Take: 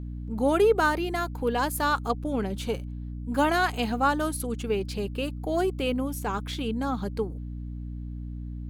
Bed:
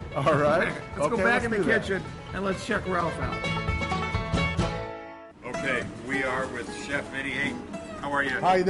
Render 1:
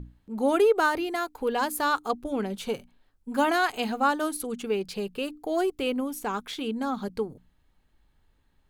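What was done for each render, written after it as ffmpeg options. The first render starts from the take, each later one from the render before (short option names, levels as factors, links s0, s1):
-af "bandreject=f=60:t=h:w=6,bandreject=f=120:t=h:w=6,bandreject=f=180:t=h:w=6,bandreject=f=240:t=h:w=6,bandreject=f=300:t=h:w=6"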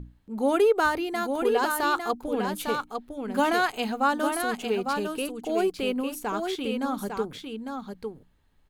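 -af "aecho=1:1:853:0.531"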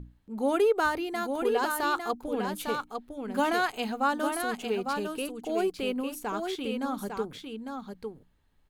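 -af "volume=0.708"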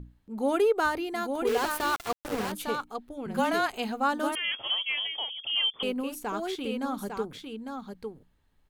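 -filter_complex "[0:a]asettb=1/sr,asplit=3[s0][s1][s2];[s0]atrim=end=1.474[s3];[s1]atrim=start=1.47:end=2.52,asetpts=PTS-STARTPTS,afade=t=in:d=0.004:c=qsin,afade=t=out:st=1.046:d=0.004:c=qsin,aeval=exprs='val(0)*gte(abs(val(0)),0.0316)':c=same[s4];[s2]atrim=start=2.516[s5];[s3][s4]acrossfade=d=0.004:c1=hsin:c2=qsin[s6];[s6][s5]acrossfade=d=0.004:c1=qsin:c2=hsin,asettb=1/sr,asplit=3[s7][s8][s9];[s7]atrim=end=3.264[s10];[s8]atrim=start=3.26:end=3.75,asetpts=PTS-STARTPTS,afade=t=in:d=0.004:c=qsin,afade=t=out:st=0.486:d=0.004:c=qsin,afreqshift=-28[s11];[s9]atrim=start=3.746[s12];[s10][s11]acrossfade=d=0.004:c1=hsin:c2=qsin[s13];[s13][s12]acrossfade=d=0.004:c1=qsin:c2=hsin,asettb=1/sr,asplit=3[s14][s15][s16];[s14]atrim=end=4.354[s17];[s15]atrim=start=4.35:end=5.83,asetpts=PTS-STARTPTS,afade=t=in:d=0.004:c=qsin,afade=t=out:st=1.476:d=0.004:c=qsin,lowpass=f=3000:t=q:w=0.5098,lowpass=f=3000:t=q:w=0.6013,lowpass=f=3000:t=q:w=0.9,lowpass=f=3000:t=q:w=2.563,afreqshift=-3500[s18];[s16]atrim=start=5.826[s19];[s17][s18]acrossfade=d=0.004:c1=hsin:c2=qsin[s20];[s20][s19]acrossfade=d=0.004:c1=qsin:c2=hsin"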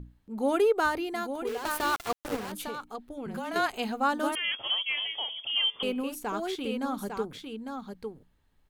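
-filter_complex "[0:a]asettb=1/sr,asplit=3[s0][s1][s2];[s0]atrim=end=2.364[s3];[s1]atrim=start=2.36:end=3.56,asetpts=PTS-STARTPTS,afade=t=in:d=0.004:c=qsin,afade=t=out:st=1.196:d=0.004:c=qsin,acompressor=threshold=0.0251:ratio=6:attack=3.2:release=140:knee=1:detection=peak[s4];[s2]atrim=start=3.556[s5];[s3][s4]acrossfade=d=0.004:c1=hsin:c2=qsin[s6];[s6][s5]acrossfade=d=0.004:c1=qsin:c2=hsin,asettb=1/sr,asplit=3[s7][s8][s9];[s7]atrim=end=4.874[s10];[s8]atrim=start=4.87:end=6.03,asetpts=PTS-STARTPTS,afade=t=in:d=0.004:c=qsin,afade=t=out:st=1.156:d=0.004:c=qsin,bandreject=f=109.9:t=h:w=4,bandreject=f=219.8:t=h:w=4,bandreject=f=329.7:t=h:w=4,bandreject=f=439.6:t=h:w=4,bandreject=f=549.5:t=h:w=4,bandreject=f=659.4:t=h:w=4,bandreject=f=769.3:t=h:w=4,bandreject=f=879.2:t=h:w=4,bandreject=f=989.1:t=h:w=4,bandreject=f=1099:t=h:w=4,bandreject=f=1208.9:t=h:w=4,bandreject=f=1318.8:t=h:w=4,bandreject=f=1428.7:t=h:w=4,bandreject=f=1538.6:t=h:w=4,bandreject=f=1648.5:t=h:w=4,bandreject=f=1758.4:t=h:w=4,bandreject=f=1868.3:t=h:w=4,bandreject=f=1978.2:t=h:w=4,bandreject=f=2088.1:t=h:w=4,bandreject=f=2198:t=h:w=4,bandreject=f=2307.9:t=h:w=4,bandreject=f=2417.8:t=h:w=4,bandreject=f=2527.7:t=h:w=4,bandreject=f=2637.6:t=h:w=4,bandreject=f=2747.5:t=h:w=4,bandreject=f=2857.4:t=h:w=4,bandreject=f=2967.3:t=h:w=4,bandreject=f=3077.2:t=h:w=4,bandreject=f=3187.1:t=h:w=4,bandreject=f=3297:t=h:w=4,bandreject=f=3406.9:t=h:w=4,bandreject=f=3516.8:t=h:w=4,bandreject=f=3626.7:t=h:w=4[s11];[s9]atrim=start=6.026[s12];[s10][s11]acrossfade=d=0.004:c1=hsin:c2=qsin[s13];[s13][s12]acrossfade=d=0.004:c1=qsin:c2=hsin,asplit=2[s14][s15];[s14]atrim=end=1.65,asetpts=PTS-STARTPTS,afade=t=out:st=1.09:d=0.56:silence=0.281838[s16];[s15]atrim=start=1.65,asetpts=PTS-STARTPTS,afade=t=in:d=0.004:c=hsin:silence=0.281838[s17];[s16][s17]concat=n=2:v=0:a=1"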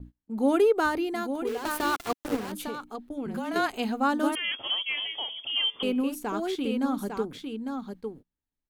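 -af "agate=range=0.0708:threshold=0.00447:ratio=16:detection=peak,equalizer=f=280:t=o:w=0.89:g=6.5"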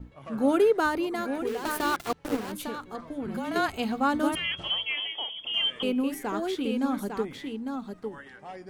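-filter_complex "[1:a]volume=0.0944[s0];[0:a][s0]amix=inputs=2:normalize=0"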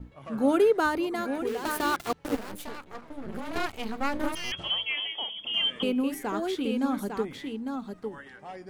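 -filter_complex "[0:a]asettb=1/sr,asplit=3[s0][s1][s2];[s0]atrim=end=2.354[s3];[s1]atrim=start=2.35:end=4.52,asetpts=PTS-STARTPTS,afade=t=in:d=0.004:c=qsin,afade=t=out:st=2.166:d=0.004:c=qsin,aeval=exprs='max(val(0),0)':c=same[s4];[s2]atrim=start=4.516[s5];[s3][s4]acrossfade=d=0.004:c1=hsin:c2=qsin[s6];[s6][s5]acrossfade=d=0.004:c1=qsin:c2=hsin,asettb=1/sr,asplit=3[s7][s8][s9];[s7]atrim=end=5.224[s10];[s8]atrim=start=5.22:end=5.84,asetpts=PTS-STARTPTS,afade=t=in:d=0.004:c=qsin,afade=t=out:st=0.616:d=0.004:c=qsin,equalizer=f=220:t=o:w=0.81:g=7[s11];[s9]atrim=start=5.836[s12];[s10][s11]acrossfade=d=0.004:c1=hsin:c2=qsin[s13];[s13][s12]acrossfade=d=0.004:c1=qsin:c2=hsin"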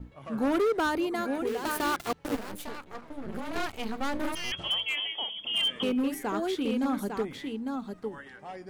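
-af "volume=13.3,asoftclip=hard,volume=0.075"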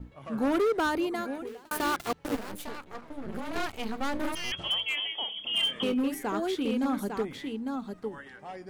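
-filter_complex "[0:a]asettb=1/sr,asplit=3[s0][s1][s2];[s0]atrim=end=5.274[s3];[s1]atrim=start=5.27:end=5.94,asetpts=PTS-STARTPTS,afade=t=in:d=0.004:c=qsin,afade=t=out:st=0.666:d=0.004:c=qsin,asplit=2[s4][s5];[s5]adelay=30,volume=0.299[s6];[s4][s6]amix=inputs=2:normalize=0,atrim=end_sample=29547[s7];[s2]atrim=start=5.936[s8];[s3][s7]acrossfade=d=0.004:c1=hsin:c2=qsin[s9];[s9][s8]acrossfade=d=0.004:c1=qsin:c2=hsin,asplit=2[s10][s11];[s10]atrim=end=1.71,asetpts=PTS-STARTPTS,afade=t=out:st=1.07:d=0.64[s12];[s11]atrim=start=1.71,asetpts=PTS-STARTPTS,afade=t=in:d=0.004:c=hsin[s13];[s12][s13]concat=n=2:v=0:a=1"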